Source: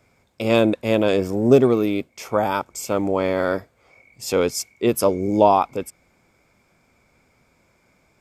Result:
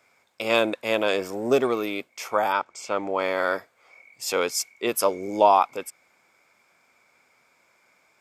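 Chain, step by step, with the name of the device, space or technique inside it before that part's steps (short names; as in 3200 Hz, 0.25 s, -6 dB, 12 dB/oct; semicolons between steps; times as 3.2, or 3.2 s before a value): filter by subtraction (in parallel: LPF 1300 Hz 12 dB/oct + phase invert); 2.52–3.19 on the sum: air absorption 100 m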